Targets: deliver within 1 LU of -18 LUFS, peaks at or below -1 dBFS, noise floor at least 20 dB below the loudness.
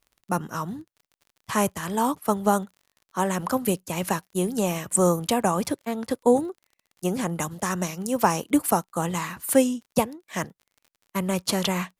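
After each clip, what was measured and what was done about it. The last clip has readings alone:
ticks 44/s; loudness -25.5 LUFS; peak -4.0 dBFS; loudness target -18.0 LUFS
-> de-click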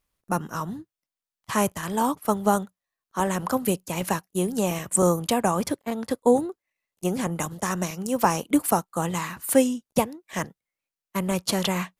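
ticks 0.25/s; loudness -25.5 LUFS; peak -4.5 dBFS; loudness target -18.0 LUFS
-> gain +7.5 dB; limiter -1 dBFS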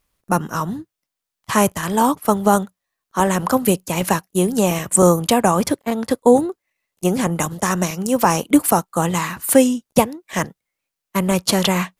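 loudness -18.5 LUFS; peak -1.0 dBFS; noise floor -83 dBFS

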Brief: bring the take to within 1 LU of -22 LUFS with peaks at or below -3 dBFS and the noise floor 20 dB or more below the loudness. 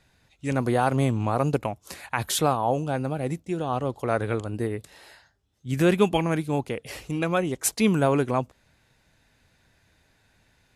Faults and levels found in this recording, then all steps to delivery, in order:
loudness -25.5 LUFS; peak -8.5 dBFS; loudness target -22.0 LUFS
-> gain +3.5 dB

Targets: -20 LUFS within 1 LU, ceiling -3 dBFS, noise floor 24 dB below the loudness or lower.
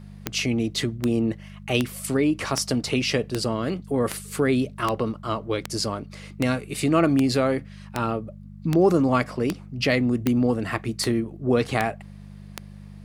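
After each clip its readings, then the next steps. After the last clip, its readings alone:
clicks 17; hum 50 Hz; harmonics up to 200 Hz; hum level -39 dBFS; loudness -24.5 LUFS; peak -4.5 dBFS; loudness target -20.0 LUFS
-> de-click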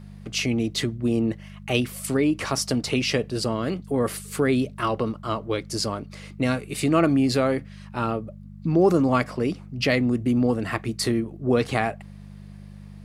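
clicks 0; hum 50 Hz; harmonics up to 200 Hz; hum level -39 dBFS
-> de-hum 50 Hz, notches 4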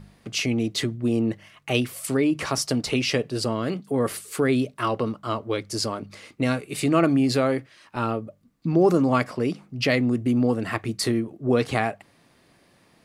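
hum none; loudness -24.5 LUFS; peak -6.0 dBFS; loudness target -20.0 LUFS
-> gain +4.5 dB; limiter -3 dBFS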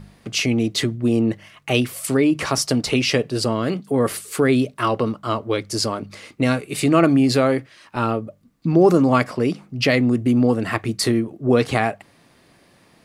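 loudness -20.0 LUFS; peak -3.0 dBFS; noise floor -55 dBFS

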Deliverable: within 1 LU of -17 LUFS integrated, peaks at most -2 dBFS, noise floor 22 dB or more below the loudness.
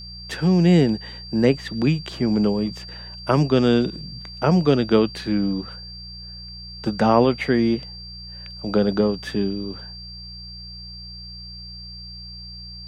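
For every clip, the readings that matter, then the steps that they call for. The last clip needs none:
hum 60 Hz; harmonics up to 180 Hz; hum level -39 dBFS; steady tone 4700 Hz; tone level -37 dBFS; loudness -21.0 LUFS; peak -2.5 dBFS; loudness target -17.0 LUFS
-> de-hum 60 Hz, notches 3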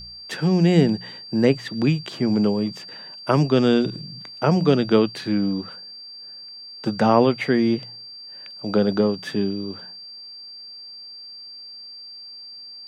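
hum none; steady tone 4700 Hz; tone level -37 dBFS
-> notch 4700 Hz, Q 30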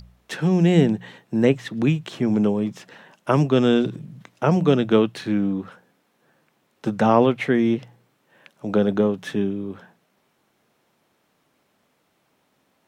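steady tone none; loudness -21.0 LUFS; peak -2.5 dBFS; loudness target -17.0 LUFS
-> gain +4 dB; limiter -2 dBFS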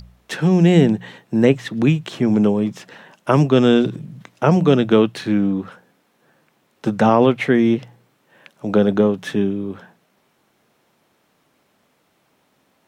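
loudness -17.5 LUFS; peak -2.0 dBFS; noise floor -64 dBFS

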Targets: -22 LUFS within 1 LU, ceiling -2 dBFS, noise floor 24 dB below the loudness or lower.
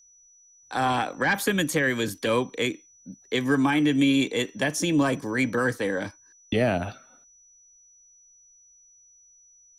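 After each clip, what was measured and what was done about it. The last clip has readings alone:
steady tone 5900 Hz; tone level -54 dBFS; loudness -25.0 LUFS; peak -10.5 dBFS; loudness target -22.0 LUFS
-> notch 5900 Hz, Q 30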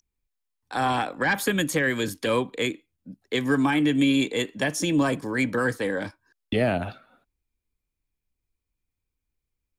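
steady tone none; loudness -25.0 LUFS; peak -10.5 dBFS; loudness target -22.0 LUFS
-> gain +3 dB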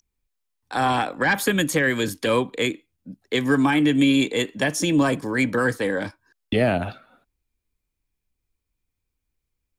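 loudness -22.0 LUFS; peak -7.5 dBFS; noise floor -81 dBFS

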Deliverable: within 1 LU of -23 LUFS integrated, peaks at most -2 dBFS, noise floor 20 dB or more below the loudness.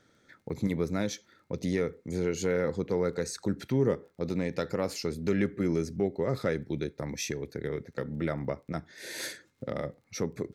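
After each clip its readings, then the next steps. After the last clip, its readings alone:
ticks 17/s; loudness -32.5 LUFS; peak -16.0 dBFS; loudness target -23.0 LUFS
-> de-click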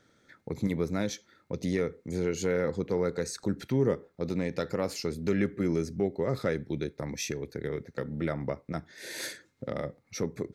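ticks 0.095/s; loudness -32.5 LUFS; peak -14.5 dBFS; loudness target -23.0 LUFS
-> gain +9.5 dB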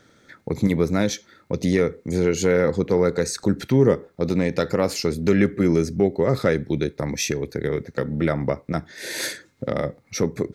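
loudness -23.0 LUFS; peak -5.0 dBFS; noise floor -59 dBFS

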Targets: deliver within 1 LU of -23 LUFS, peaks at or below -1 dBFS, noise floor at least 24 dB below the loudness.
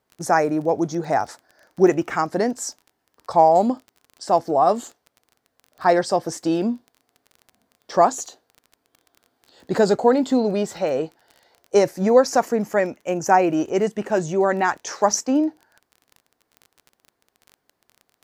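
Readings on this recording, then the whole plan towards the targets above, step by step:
ticks 24/s; loudness -20.5 LUFS; peak -2.0 dBFS; loudness target -23.0 LUFS
-> de-click; gain -2.5 dB

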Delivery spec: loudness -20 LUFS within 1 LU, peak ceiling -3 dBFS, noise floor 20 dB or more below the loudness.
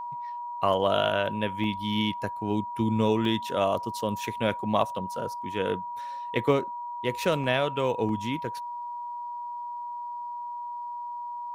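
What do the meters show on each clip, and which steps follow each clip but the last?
dropouts 5; longest dropout 1.9 ms; steady tone 960 Hz; tone level -33 dBFS; loudness -29.0 LUFS; peak -8.5 dBFS; loudness target -20.0 LUFS
-> interpolate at 1.64/3.25/4.82/7.44/8.09, 1.9 ms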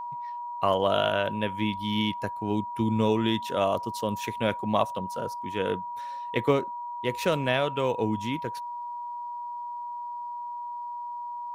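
dropouts 0; steady tone 960 Hz; tone level -33 dBFS
-> notch 960 Hz, Q 30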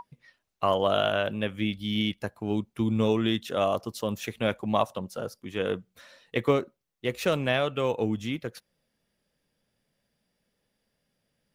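steady tone none; loudness -28.5 LUFS; peak -8.5 dBFS; loudness target -20.0 LUFS
-> gain +8.5 dB; limiter -3 dBFS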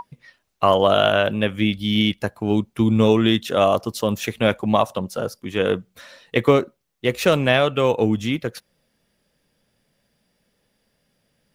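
loudness -20.0 LUFS; peak -3.0 dBFS; noise floor -70 dBFS

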